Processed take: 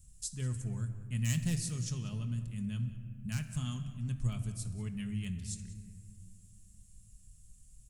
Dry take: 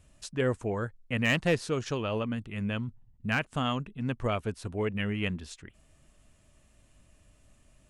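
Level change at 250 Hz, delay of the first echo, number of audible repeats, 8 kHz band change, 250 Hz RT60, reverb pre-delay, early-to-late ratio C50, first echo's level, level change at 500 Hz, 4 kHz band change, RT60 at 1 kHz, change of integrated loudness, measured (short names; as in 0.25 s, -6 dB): -6.5 dB, 0.189 s, 1, +5.5 dB, 3.4 s, 5 ms, 10.0 dB, -18.0 dB, -23.5 dB, -9.5 dB, 1.7 s, -6.0 dB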